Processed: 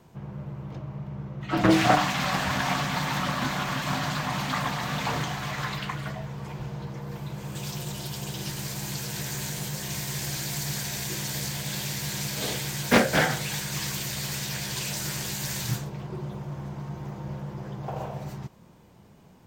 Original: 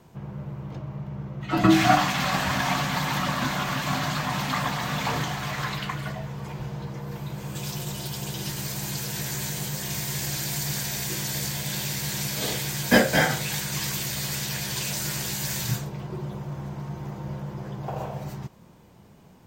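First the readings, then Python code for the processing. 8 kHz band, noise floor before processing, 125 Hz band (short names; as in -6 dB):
-2.5 dB, -51 dBFS, -1.5 dB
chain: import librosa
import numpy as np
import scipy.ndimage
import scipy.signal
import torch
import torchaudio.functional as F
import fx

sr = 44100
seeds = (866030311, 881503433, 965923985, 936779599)

y = fx.doppler_dist(x, sr, depth_ms=0.5)
y = y * 10.0 ** (-1.5 / 20.0)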